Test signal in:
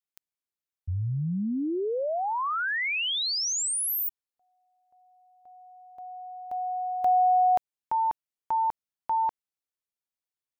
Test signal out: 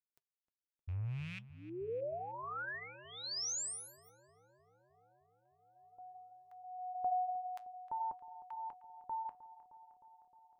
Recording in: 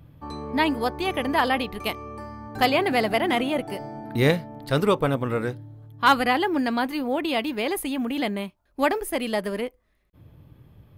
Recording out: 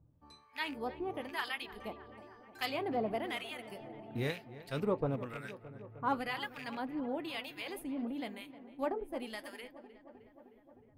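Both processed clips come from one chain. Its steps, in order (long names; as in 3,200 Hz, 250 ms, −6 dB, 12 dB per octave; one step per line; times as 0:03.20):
loose part that buzzes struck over −28 dBFS, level −23 dBFS
noise reduction from a noise print of the clip's start 7 dB
two-band tremolo in antiphase 1 Hz, depth 100%, crossover 1,100 Hz
flanger 0.59 Hz, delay 2.1 ms, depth 7 ms, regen −71%
on a send: feedback echo with a low-pass in the loop 309 ms, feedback 78%, low-pass 2,200 Hz, level −15.5 dB
on the sum: level −5.5 dB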